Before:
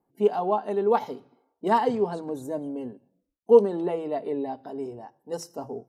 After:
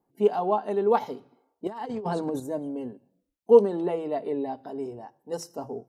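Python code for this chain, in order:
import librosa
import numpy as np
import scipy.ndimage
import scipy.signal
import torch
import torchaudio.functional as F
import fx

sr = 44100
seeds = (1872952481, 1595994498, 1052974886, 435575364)

y = fx.over_compress(x, sr, threshold_db=-32.0, ratio=-1.0, at=(1.67, 2.4))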